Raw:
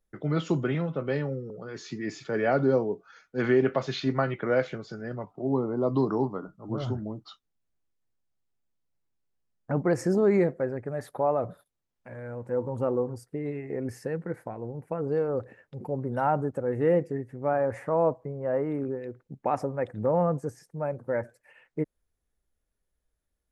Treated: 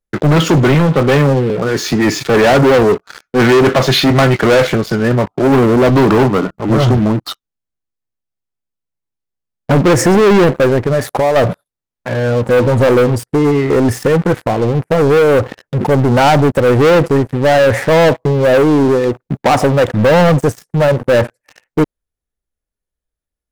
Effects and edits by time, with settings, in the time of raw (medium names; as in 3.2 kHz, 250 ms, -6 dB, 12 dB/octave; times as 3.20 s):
10.78–11.36 s: compression 5:1, threshold -31 dBFS
whole clip: waveshaping leveller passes 5; trim +6.5 dB